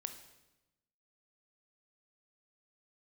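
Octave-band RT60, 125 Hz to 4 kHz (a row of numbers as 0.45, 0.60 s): 1.3, 1.2, 1.0, 0.95, 0.90, 0.90 s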